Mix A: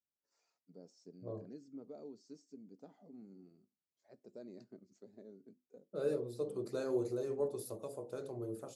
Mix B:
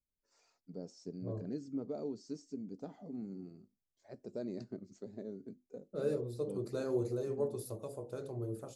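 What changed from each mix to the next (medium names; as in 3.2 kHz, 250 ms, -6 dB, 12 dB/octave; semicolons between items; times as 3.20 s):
first voice +9.0 dB; master: remove Bessel high-pass 190 Hz, order 2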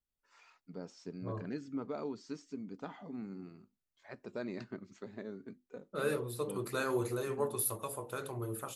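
second voice: remove low-pass 4.8 kHz 12 dB/octave; master: add high-order bell 1.8 kHz +15 dB 2.3 oct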